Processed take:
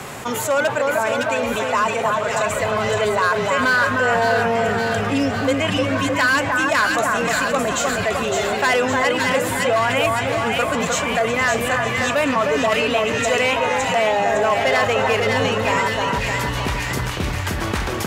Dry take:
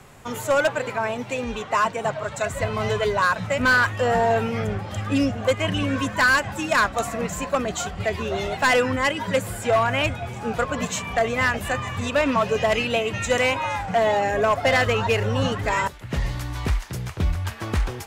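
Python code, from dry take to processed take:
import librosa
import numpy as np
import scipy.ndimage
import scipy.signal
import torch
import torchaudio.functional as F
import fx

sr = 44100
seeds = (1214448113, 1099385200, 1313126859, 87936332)

p1 = fx.highpass(x, sr, hz=210.0, slope=6)
p2 = p1 + fx.echo_split(p1, sr, split_hz=1700.0, low_ms=308, high_ms=560, feedback_pct=52, wet_db=-4.0, dry=0)
y = fx.env_flatten(p2, sr, amount_pct=50)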